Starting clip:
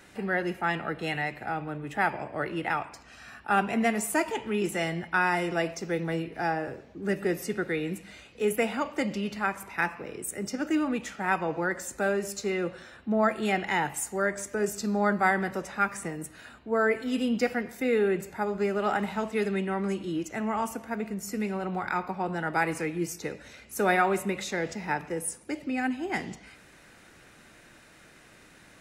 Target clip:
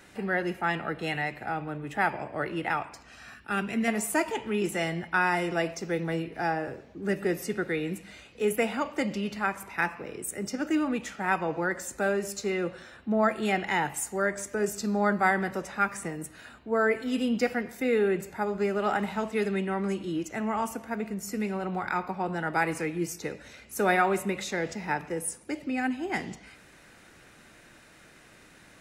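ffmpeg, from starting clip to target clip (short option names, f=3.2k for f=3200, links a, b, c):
-filter_complex "[0:a]asettb=1/sr,asplit=3[a][b][c];[a]atrim=end=3.344[d];[b]atrim=start=3.34:end=3.88,asetpts=PTS-STARTPTS,afade=t=in:d=0.004:c=qsin,afade=t=out:st=0.536:d=0.004:c=qsin,equalizer=f=800:w=1.3:g=-12.5[e];[c]atrim=start=3.876[f];[d][e]acrossfade=d=0.004:c1=hsin:c2=qsin[g];[g][f]acrossfade=d=0.004:c1=qsin:c2=hsin"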